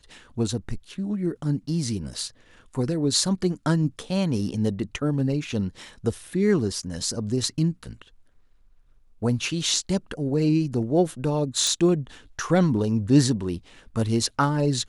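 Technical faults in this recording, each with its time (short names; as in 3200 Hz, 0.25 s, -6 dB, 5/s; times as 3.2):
11.67 pop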